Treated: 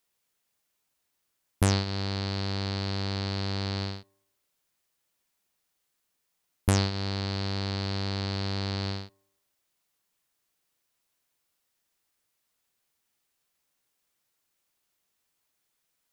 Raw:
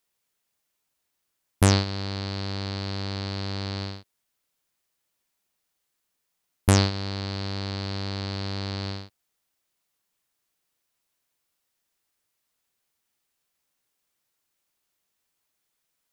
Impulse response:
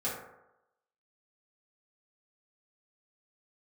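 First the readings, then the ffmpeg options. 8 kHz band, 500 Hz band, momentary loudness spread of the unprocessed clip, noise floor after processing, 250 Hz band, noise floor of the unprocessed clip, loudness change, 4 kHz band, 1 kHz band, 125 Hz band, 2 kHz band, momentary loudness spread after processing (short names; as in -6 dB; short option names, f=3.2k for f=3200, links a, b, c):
-5.0 dB, -2.5 dB, 12 LU, -79 dBFS, -2.5 dB, -79 dBFS, -2.5 dB, -1.5 dB, -2.5 dB, -2.5 dB, -2.5 dB, 7 LU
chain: -filter_complex "[0:a]acompressor=threshold=-24dB:ratio=2,asplit=2[a][b];[1:a]atrim=start_sample=2205[c];[b][c]afir=irnorm=-1:irlink=0,volume=-28dB[d];[a][d]amix=inputs=2:normalize=0"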